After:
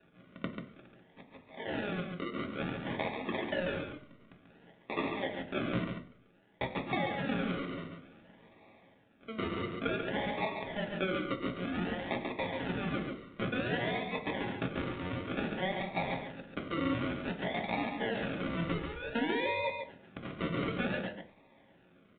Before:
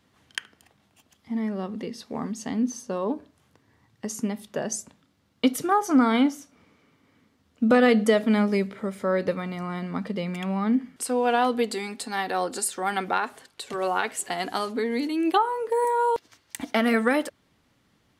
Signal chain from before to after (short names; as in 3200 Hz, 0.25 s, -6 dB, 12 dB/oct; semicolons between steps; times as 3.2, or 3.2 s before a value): HPF 650 Hz 24 dB/oct; in parallel at +3 dB: limiter -19.5 dBFS, peak gain reduction 10 dB; on the sum: compressor 16:1, threshold -30 dBFS, peak gain reduction 18 dB; decimation with a swept rate 41×, swing 60% 0.67 Hz; tempo 0.82×; tapped delay 0.103/0.139 s -19/-6 dB; reverb RT60 0.45 s, pre-delay 3 ms, DRR 5 dB; downsampling 8000 Hz